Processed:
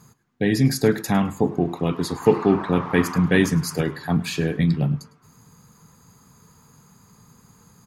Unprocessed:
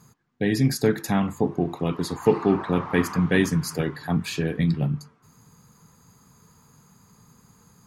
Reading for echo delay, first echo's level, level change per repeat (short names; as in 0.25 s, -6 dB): 0.105 s, -20.0 dB, -14.0 dB